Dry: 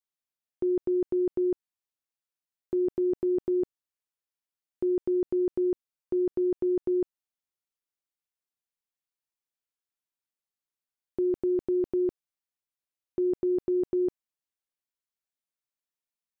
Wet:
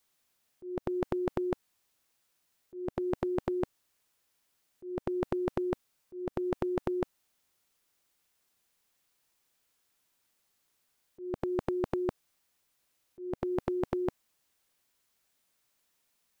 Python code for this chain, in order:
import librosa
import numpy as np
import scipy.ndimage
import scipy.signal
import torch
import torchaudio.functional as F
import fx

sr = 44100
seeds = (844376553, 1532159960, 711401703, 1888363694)

y = fx.auto_swell(x, sr, attack_ms=358.0)
y = fx.spectral_comp(y, sr, ratio=2.0)
y = y * 10.0 ** (4.5 / 20.0)